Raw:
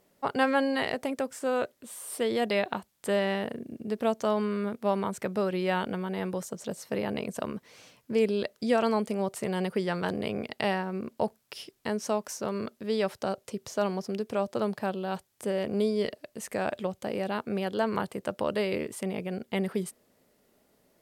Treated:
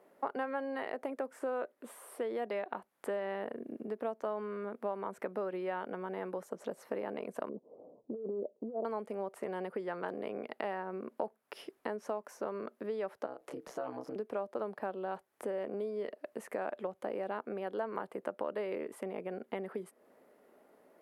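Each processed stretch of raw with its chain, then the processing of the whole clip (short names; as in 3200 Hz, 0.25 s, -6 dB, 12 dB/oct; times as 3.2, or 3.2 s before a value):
7.49–8.85 inverse Chebyshev low-pass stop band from 1600 Hz, stop band 50 dB + bell 64 Hz -6 dB 1.8 oct + negative-ratio compressor -29 dBFS, ratio -0.5
13.26–14.16 doubler 26 ms -3.5 dB + compressor 3:1, threshold -36 dBFS + ring modulator 64 Hz
whole clip: bell 11000 Hz +9 dB 0.32 oct; compressor 5:1, threshold -40 dBFS; three-band isolator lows -22 dB, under 260 Hz, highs -19 dB, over 2000 Hz; gain +6.5 dB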